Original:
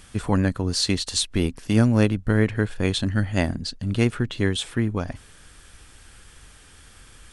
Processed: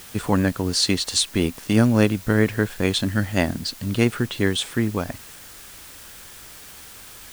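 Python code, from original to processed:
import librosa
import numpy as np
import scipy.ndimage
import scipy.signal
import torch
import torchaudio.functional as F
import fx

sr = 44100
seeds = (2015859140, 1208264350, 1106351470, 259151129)

p1 = fx.low_shelf(x, sr, hz=80.0, db=-12.0)
p2 = fx.quant_dither(p1, sr, seeds[0], bits=6, dither='triangular')
y = p1 + (p2 * 10.0 ** (-7.5 / 20.0))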